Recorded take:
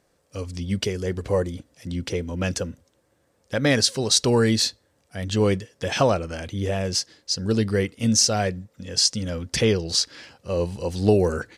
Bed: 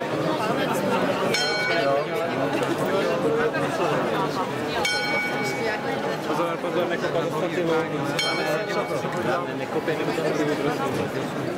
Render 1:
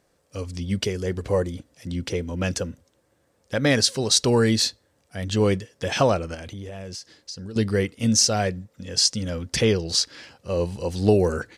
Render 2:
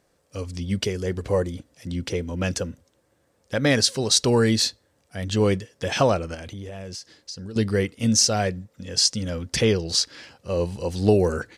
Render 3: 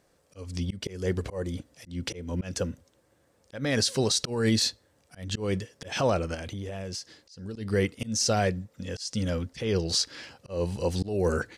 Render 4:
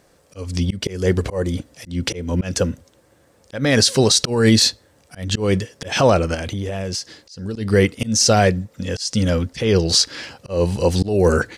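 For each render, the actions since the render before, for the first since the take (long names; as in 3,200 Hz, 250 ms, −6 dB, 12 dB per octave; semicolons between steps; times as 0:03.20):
0:06.34–0:07.56: downward compressor 12 to 1, threshold −32 dBFS
no processing that can be heard
brickwall limiter −15 dBFS, peak gain reduction 9 dB; volume swells 233 ms
level +10.5 dB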